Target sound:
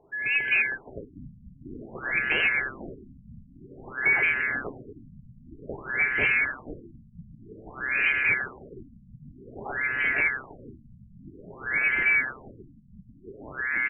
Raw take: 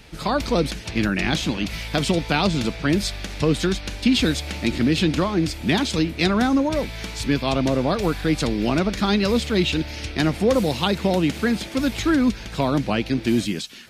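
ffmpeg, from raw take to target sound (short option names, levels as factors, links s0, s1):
-filter_complex "[0:a]afftfilt=real='real(if(lt(b,920),b+92*(1-2*mod(floor(b/92),2)),b),0)':imag='imag(if(lt(b,920),b+92*(1-2*mod(floor(b/92),2)),b),0)':win_size=2048:overlap=0.75,equalizer=f=125:t=o:w=0.33:g=7,equalizer=f=400:t=o:w=0.33:g=8,equalizer=f=1250:t=o:w=0.33:g=-9,equalizer=f=2500:t=o:w=0.33:g=7,equalizer=f=5000:t=o:w=0.33:g=-10,equalizer=f=8000:t=o:w=0.33:g=5,aeval=exprs='val(0)+0.0891*sin(2*PI*1700*n/s)':c=same,asplit=8[s0][s1][s2][s3][s4][s5][s6][s7];[s1]adelay=486,afreqshift=-130,volume=0.501[s8];[s2]adelay=972,afreqshift=-260,volume=0.285[s9];[s3]adelay=1458,afreqshift=-390,volume=0.162[s10];[s4]adelay=1944,afreqshift=-520,volume=0.0933[s11];[s5]adelay=2430,afreqshift=-650,volume=0.0531[s12];[s6]adelay=2916,afreqshift=-780,volume=0.0302[s13];[s7]adelay=3402,afreqshift=-910,volume=0.0172[s14];[s0][s8][s9][s10][s11][s12][s13][s14]amix=inputs=8:normalize=0,aeval=exprs='0.398*(abs(mod(val(0)/0.398+3,4)-2)-1)':c=same,afftfilt=real='re*lt(b*sr/1024,220*pow(3200/220,0.5+0.5*sin(2*PI*0.52*pts/sr)))':imag='im*lt(b*sr/1024,220*pow(3200/220,0.5+0.5*sin(2*PI*0.52*pts/sr)))':win_size=1024:overlap=0.75,volume=0.422"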